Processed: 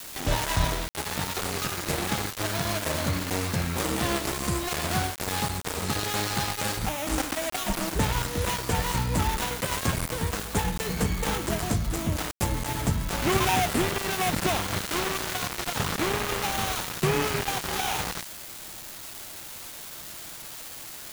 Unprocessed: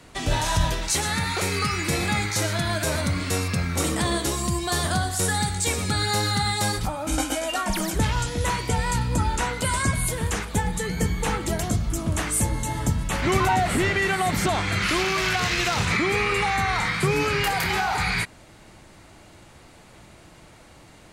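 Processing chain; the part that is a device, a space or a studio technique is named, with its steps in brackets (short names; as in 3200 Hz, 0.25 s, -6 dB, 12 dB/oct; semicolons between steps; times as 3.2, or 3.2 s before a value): bell 75 Hz -3 dB 2.7 oct; budget class-D amplifier (switching dead time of 0.3 ms; switching spikes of -21.5 dBFS)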